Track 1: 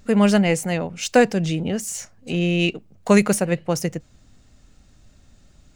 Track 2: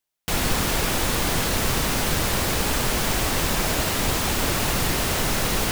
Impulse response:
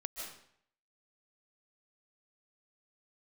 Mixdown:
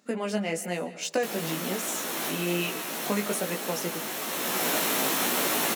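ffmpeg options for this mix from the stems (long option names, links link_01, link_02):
-filter_complex "[0:a]acompressor=threshold=-18dB:ratio=6,volume=-4.5dB,asplit=3[link_01][link_02][link_03];[link_02]volume=-8.5dB[link_04];[1:a]bandreject=frequency=4800:width=11,adelay=950,volume=-1.5dB,asplit=2[link_05][link_06];[link_06]volume=-7dB[link_07];[link_03]apad=whole_len=294056[link_08];[link_05][link_08]sidechaincompress=threshold=-43dB:ratio=8:attack=8.7:release=574[link_09];[2:a]atrim=start_sample=2205[link_10];[link_04][link_07]amix=inputs=2:normalize=0[link_11];[link_11][link_10]afir=irnorm=-1:irlink=0[link_12];[link_01][link_09][link_12]amix=inputs=3:normalize=0,highpass=frequency=210:width=0.5412,highpass=frequency=210:width=1.3066,equalizer=frequency=12000:width_type=o:width=0.25:gain=8,flanger=delay=16:depth=2.9:speed=1.1"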